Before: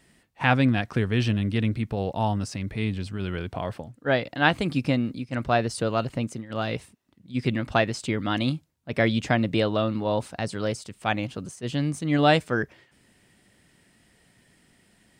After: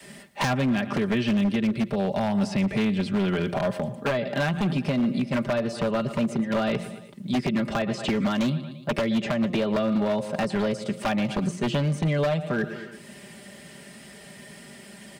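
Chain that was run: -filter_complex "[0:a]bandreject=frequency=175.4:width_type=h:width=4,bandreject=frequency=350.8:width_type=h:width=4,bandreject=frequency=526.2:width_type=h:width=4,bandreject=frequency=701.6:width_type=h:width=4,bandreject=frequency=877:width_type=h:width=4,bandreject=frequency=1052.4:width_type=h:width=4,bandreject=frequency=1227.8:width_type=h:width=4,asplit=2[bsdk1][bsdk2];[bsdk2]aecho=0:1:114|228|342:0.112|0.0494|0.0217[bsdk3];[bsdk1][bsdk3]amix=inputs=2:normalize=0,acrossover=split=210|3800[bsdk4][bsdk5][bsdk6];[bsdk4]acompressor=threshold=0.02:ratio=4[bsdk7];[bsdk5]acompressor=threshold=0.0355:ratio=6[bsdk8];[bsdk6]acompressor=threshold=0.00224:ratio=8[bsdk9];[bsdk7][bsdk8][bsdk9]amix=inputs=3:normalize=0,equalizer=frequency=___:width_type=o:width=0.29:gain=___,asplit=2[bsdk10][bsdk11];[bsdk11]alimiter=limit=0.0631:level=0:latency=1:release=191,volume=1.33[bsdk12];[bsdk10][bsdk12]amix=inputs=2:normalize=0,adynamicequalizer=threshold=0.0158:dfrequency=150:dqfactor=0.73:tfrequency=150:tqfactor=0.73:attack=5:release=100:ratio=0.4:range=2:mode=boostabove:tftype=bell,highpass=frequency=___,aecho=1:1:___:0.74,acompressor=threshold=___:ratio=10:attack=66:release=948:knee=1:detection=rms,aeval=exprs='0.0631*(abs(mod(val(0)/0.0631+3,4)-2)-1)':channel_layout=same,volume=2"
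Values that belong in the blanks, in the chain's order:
590, 6.5, 95, 5, 0.0501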